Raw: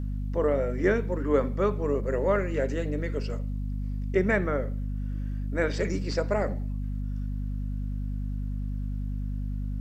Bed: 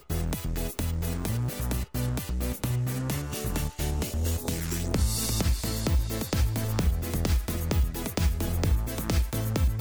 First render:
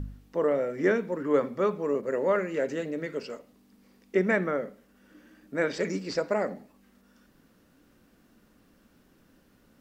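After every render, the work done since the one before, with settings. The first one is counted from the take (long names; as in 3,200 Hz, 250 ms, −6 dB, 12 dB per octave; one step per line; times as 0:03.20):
hum removal 50 Hz, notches 5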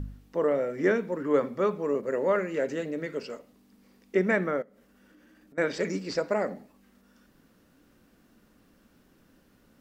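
0:04.62–0:05.58: downward compressor 5 to 1, threshold −54 dBFS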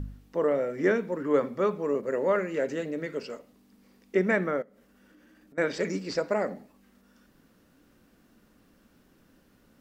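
no processing that can be heard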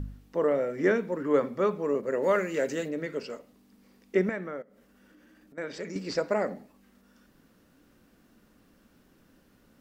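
0:02.22–0:02.87: high-shelf EQ 3,300 Hz → 4,900 Hz +11 dB
0:04.29–0:05.96: downward compressor 1.5 to 1, threshold −47 dBFS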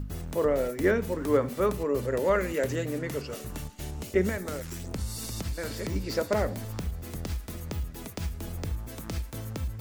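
mix in bed −8 dB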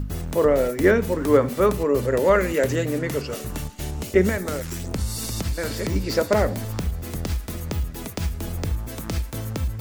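level +7 dB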